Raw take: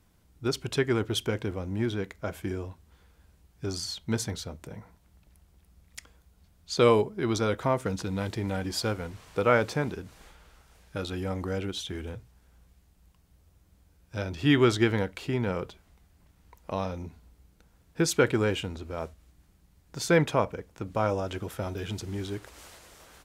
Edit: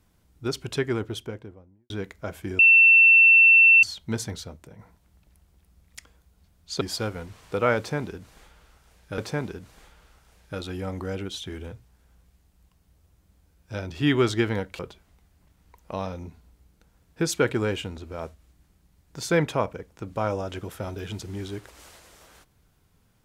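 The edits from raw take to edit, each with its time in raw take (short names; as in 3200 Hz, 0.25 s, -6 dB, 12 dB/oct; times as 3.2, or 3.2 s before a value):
0.75–1.9 studio fade out
2.59–3.83 bleep 2690 Hz -11 dBFS
4.41–4.79 fade out, to -7.5 dB
6.81–8.65 cut
9.61–11.02 loop, 2 plays
15.22–15.58 cut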